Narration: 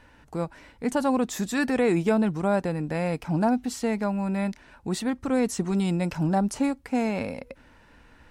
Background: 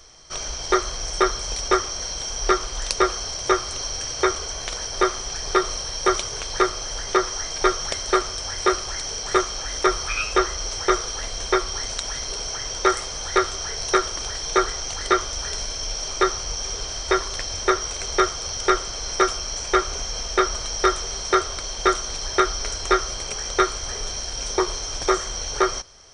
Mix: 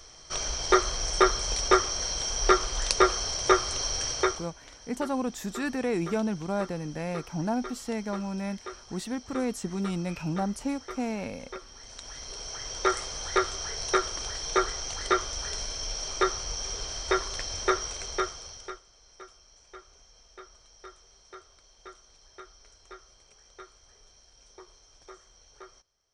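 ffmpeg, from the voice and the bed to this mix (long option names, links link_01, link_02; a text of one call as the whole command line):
ffmpeg -i stem1.wav -i stem2.wav -filter_complex "[0:a]adelay=4050,volume=-6dB[link_01];[1:a]volume=14dB,afade=type=out:start_time=4.09:duration=0.41:silence=0.105925,afade=type=in:start_time=11.77:duration=1.23:silence=0.16788,afade=type=out:start_time=17.77:duration=1.04:silence=0.0707946[link_02];[link_01][link_02]amix=inputs=2:normalize=0" out.wav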